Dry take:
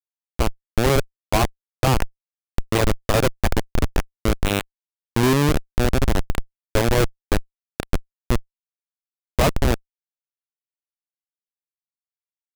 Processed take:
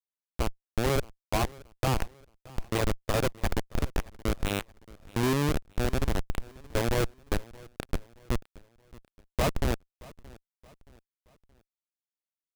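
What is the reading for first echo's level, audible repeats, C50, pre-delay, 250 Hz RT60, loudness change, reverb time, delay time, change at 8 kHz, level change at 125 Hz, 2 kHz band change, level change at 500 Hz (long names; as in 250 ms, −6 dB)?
−22.0 dB, 2, no reverb audible, no reverb audible, no reverb audible, −8.5 dB, no reverb audible, 624 ms, −8.5 dB, −8.5 dB, −8.5 dB, −8.5 dB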